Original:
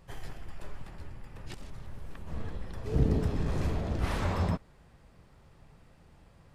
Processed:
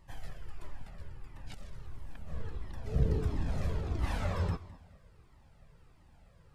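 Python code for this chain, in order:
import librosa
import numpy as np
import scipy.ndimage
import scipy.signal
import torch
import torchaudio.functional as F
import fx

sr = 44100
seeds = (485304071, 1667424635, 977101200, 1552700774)

y = fx.echo_feedback(x, sr, ms=210, feedback_pct=36, wet_db=-19.0)
y = fx.comb_cascade(y, sr, direction='falling', hz=1.5)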